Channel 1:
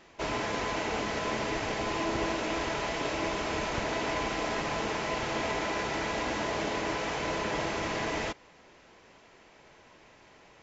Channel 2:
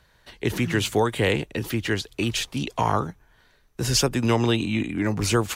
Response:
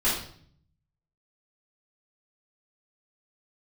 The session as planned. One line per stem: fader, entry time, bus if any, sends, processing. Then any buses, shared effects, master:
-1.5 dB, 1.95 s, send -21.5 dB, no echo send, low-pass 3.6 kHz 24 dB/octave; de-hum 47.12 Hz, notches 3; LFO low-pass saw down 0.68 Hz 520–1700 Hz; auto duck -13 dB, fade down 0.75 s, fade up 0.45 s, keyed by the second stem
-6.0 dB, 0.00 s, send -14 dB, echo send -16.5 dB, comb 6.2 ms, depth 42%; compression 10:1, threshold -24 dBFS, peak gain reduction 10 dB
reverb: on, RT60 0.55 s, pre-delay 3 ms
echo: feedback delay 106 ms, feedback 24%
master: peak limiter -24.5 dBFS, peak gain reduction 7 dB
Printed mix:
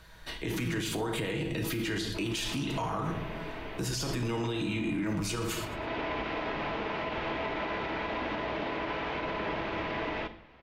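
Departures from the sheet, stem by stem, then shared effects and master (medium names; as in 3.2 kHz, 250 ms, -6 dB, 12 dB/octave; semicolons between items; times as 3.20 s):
stem 1: missing LFO low-pass saw down 0.68 Hz 520–1700 Hz; stem 2 -6.0 dB -> +2.5 dB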